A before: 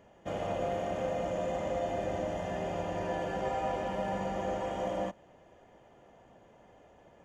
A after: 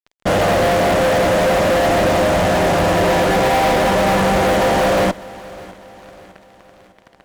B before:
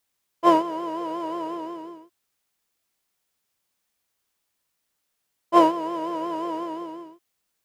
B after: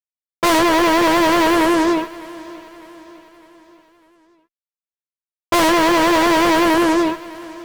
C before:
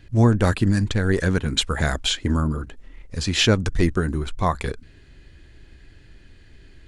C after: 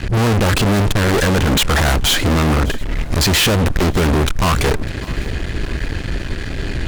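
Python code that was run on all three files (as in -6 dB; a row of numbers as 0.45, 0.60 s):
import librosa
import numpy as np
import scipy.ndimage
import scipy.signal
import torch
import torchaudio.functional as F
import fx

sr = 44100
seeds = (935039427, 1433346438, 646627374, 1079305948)

y = fx.high_shelf(x, sr, hz=2400.0, db=-5.0)
y = fx.fuzz(y, sr, gain_db=44.0, gate_db=-51.0)
y = fx.echo_feedback(y, sr, ms=604, feedback_pct=48, wet_db=-20)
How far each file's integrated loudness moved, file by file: +19.5, +9.5, +5.0 LU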